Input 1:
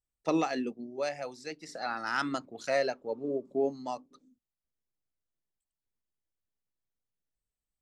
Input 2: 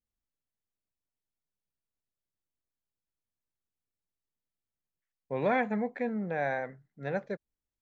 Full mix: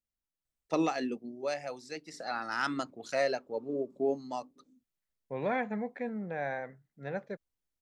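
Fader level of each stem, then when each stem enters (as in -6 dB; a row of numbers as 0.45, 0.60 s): -1.0, -4.0 dB; 0.45, 0.00 s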